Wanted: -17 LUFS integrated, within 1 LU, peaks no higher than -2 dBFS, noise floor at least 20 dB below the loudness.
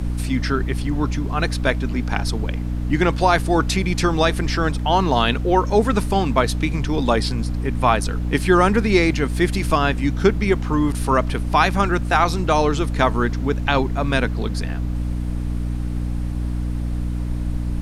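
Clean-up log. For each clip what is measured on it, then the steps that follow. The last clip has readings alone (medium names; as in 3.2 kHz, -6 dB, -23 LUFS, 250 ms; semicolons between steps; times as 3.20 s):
hum 60 Hz; highest harmonic 300 Hz; hum level -21 dBFS; noise floor -25 dBFS; noise floor target -41 dBFS; loudness -20.5 LUFS; peak level -1.5 dBFS; loudness target -17.0 LUFS
-> de-hum 60 Hz, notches 5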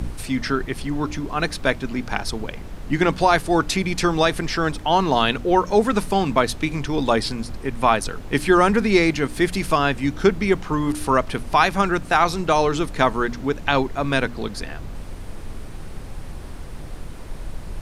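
hum not found; noise floor -35 dBFS; noise floor target -41 dBFS
-> noise print and reduce 6 dB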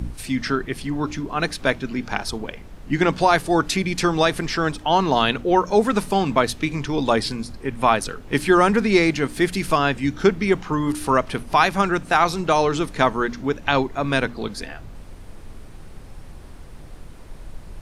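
noise floor -40 dBFS; noise floor target -41 dBFS
-> noise print and reduce 6 dB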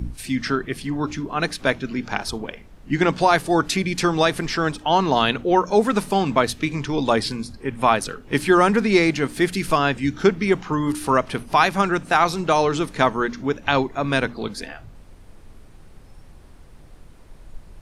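noise floor -45 dBFS; loudness -21.0 LUFS; peak level -1.5 dBFS; loudness target -17.0 LUFS
-> trim +4 dB; peak limiter -2 dBFS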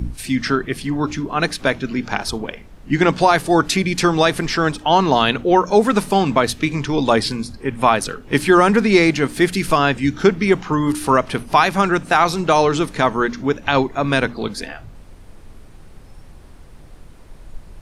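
loudness -17.5 LUFS; peak level -2.0 dBFS; noise floor -41 dBFS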